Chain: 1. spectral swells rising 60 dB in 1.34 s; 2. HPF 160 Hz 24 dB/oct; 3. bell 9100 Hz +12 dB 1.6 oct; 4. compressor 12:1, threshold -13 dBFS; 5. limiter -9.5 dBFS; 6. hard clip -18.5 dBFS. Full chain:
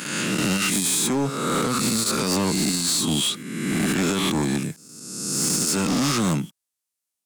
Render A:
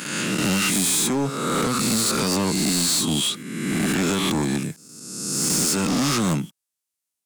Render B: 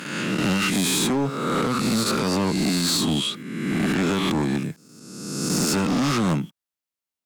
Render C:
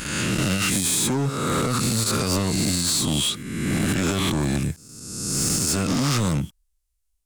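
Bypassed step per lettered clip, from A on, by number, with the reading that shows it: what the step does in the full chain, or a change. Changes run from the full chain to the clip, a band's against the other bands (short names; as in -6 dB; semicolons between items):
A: 5, momentary loudness spread change +1 LU; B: 3, 8 kHz band -6.5 dB; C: 2, 125 Hz band +5.0 dB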